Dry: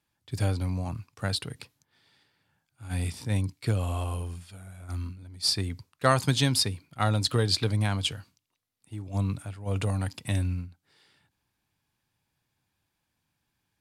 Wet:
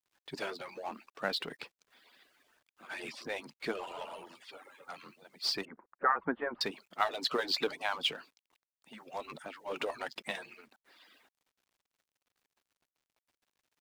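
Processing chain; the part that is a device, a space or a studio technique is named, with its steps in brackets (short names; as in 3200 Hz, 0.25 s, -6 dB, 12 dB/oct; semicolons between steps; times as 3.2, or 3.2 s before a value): median-filter separation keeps percussive; phone line with mismatched companding (BPF 350–3300 Hz; G.711 law mismatch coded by mu); 5.65–6.61 steep low-pass 1700 Hz 36 dB/oct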